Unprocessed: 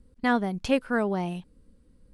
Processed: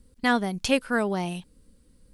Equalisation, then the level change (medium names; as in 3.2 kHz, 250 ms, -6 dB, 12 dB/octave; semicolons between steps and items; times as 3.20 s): treble shelf 2.9 kHz +12 dB; 0.0 dB